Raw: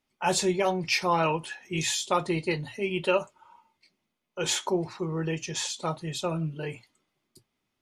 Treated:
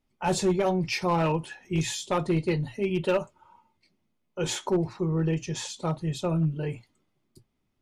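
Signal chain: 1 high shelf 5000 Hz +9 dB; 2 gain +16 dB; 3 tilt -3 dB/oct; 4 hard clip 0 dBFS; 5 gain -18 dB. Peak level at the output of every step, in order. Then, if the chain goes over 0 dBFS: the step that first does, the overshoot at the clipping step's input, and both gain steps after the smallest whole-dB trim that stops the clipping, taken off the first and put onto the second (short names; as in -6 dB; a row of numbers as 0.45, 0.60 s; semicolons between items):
-9.5, +6.5, +6.0, 0.0, -18.0 dBFS; step 2, 6.0 dB; step 2 +10 dB, step 5 -12 dB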